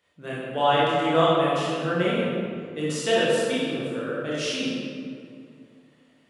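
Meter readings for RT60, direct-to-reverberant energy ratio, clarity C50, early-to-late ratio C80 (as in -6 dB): 2.2 s, -8.5 dB, -3.0 dB, -1.0 dB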